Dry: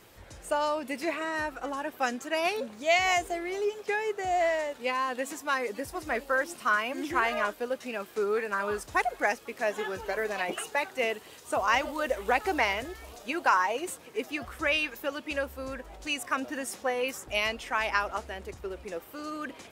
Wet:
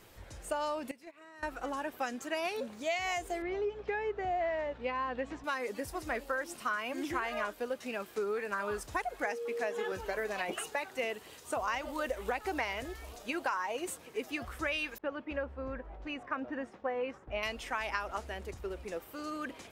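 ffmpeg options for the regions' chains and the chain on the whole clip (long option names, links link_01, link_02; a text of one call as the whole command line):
ffmpeg -i in.wav -filter_complex "[0:a]asettb=1/sr,asplit=3[link_01][link_02][link_03];[link_01]atrim=end=0.914[link_04];[link_02]atrim=start=0.91:end=1.43,asetpts=PTS-STARTPTS,afade=type=in:duration=0.004:curve=qsin,afade=type=out:start_time=0.516:duration=0.004:curve=qsin,agate=range=-19dB:threshold=-28dB:ratio=16:release=100:detection=peak,acompressor=threshold=-42dB:ratio=12:attack=3.2:release=140:knee=1:detection=peak[link_05];[link_03]atrim=start=1.426[link_06];[link_04][link_05]acrossfade=duration=0.004:curve1=hsin:curve2=qsin[link_07];[link_07][link_06]acrossfade=duration=0.004:curve1=qsin:curve2=hsin,asettb=1/sr,asplit=3[link_08][link_09][link_10];[link_08]atrim=end=3.424[link_11];[link_09]atrim=start=3.42:end=5.44,asetpts=PTS-STARTPTS,afade=type=in:duration=0.004:curve=qsin,afade=type=out:start_time=2.016:duration=0.004:curve=qsin,lowpass=4500,aemphasis=mode=reproduction:type=75fm,aeval=exprs='val(0)+0.00224*(sin(2*PI*60*n/s)+sin(2*PI*2*60*n/s)/2+sin(2*PI*3*60*n/s)/3+sin(2*PI*4*60*n/s)/4+sin(2*PI*5*60*n/s)/5)':channel_layout=same[link_12];[link_10]atrim=start=5.436[link_13];[link_11][link_12]acrossfade=duration=0.004:curve1=hsin:curve2=qsin[link_14];[link_14][link_13]acrossfade=duration=0.004:curve1=qsin:curve2=hsin,asettb=1/sr,asplit=3[link_15][link_16][link_17];[link_15]atrim=end=9.254[link_18];[link_16]atrim=start=9.25:end=9.92,asetpts=PTS-STARTPTS,afade=type=in:duration=0.004:curve=qsin,afade=type=out:start_time=0.666:duration=0.004:curve=qsin,highpass=170,highshelf=frequency=11000:gain=-4.5,aeval=exprs='val(0)+0.0282*sin(2*PI*470*n/s)':channel_layout=same[link_19];[link_17]atrim=start=9.916[link_20];[link_18][link_19]acrossfade=duration=0.004:curve1=hsin:curve2=qsin[link_21];[link_21][link_20]acrossfade=duration=0.004:curve1=qsin:curve2=hsin,asettb=1/sr,asplit=3[link_22][link_23][link_24];[link_22]atrim=end=14.984[link_25];[link_23]atrim=start=14.98:end=17.43,asetpts=PTS-STARTPTS,afade=type=in:duration=0.004:curve=qsin,afade=type=out:start_time=2.446:duration=0.004:curve=qsin,lowpass=1700,agate=range=-33dB:threshold=-47dB:ratio=3:release=100:detection=peak[link_26];[link_24]atrim=start=17.426[link_27];[link_25][link_26]acrossfade=duration=0.004:curve1=hsin:curve2=qsin[link_28];[link_28][link_27]acrossfade=duration=0.004:curve1=qsin:curve2=hsin,lowshelf=frequency=61:gain=7.5,acompressor=threshold=-28dB:ratio=5,volume=-2.5dB" out.wav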